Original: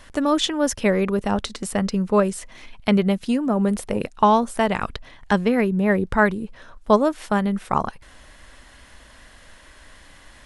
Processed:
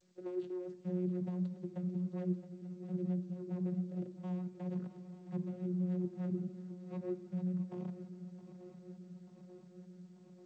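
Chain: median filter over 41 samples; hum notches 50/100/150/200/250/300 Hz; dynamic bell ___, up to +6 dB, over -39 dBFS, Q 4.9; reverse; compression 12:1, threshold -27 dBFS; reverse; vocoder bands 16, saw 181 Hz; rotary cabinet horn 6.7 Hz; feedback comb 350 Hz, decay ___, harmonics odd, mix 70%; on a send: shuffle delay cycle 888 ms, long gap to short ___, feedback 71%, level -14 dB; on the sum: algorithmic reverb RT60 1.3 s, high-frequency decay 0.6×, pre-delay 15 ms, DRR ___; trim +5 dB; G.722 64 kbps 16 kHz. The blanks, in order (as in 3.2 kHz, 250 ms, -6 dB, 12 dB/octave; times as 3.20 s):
260 Hz, 0.2 s, 3:1, 14 dB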